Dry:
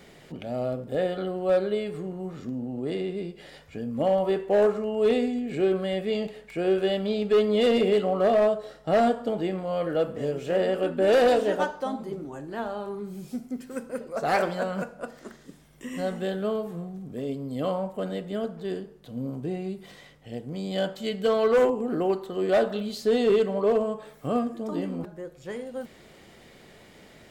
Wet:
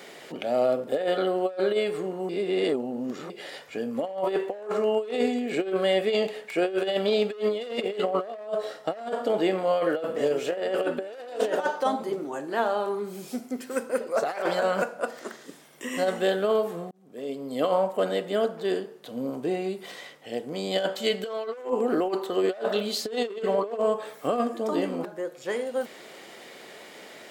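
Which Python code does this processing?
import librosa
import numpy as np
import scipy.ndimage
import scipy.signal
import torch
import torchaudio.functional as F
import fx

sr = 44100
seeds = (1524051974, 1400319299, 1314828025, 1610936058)

y = fx.edit(x, sr, fx.reverse_span(start_s=2.29, length_s=1.01),
    fx.fade_in_span(start_s=16.91, length_s=0.75), tone=tone)
y = scipy.signal.sosfilt(scipy.signal.butter(2, 370.0, 'highpass', fs=sr, output='sos'), y)
y = fx.over_compress(y, sr, threshold_db=-29.0, ratio=-0.5)
y = y * 10.0 ** (4.5 / 20.0)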